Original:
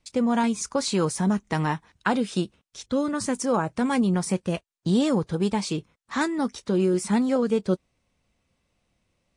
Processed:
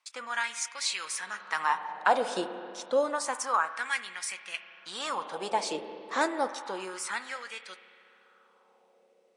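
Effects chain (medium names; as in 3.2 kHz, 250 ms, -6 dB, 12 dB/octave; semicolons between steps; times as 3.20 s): spring tank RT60 2.7 s, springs 31/48 ms, chirp 70 ms, DRR 9.5 dB; LFO high-pass sine 0.29 Hz 510–2100 Hz; trim -2.5 dB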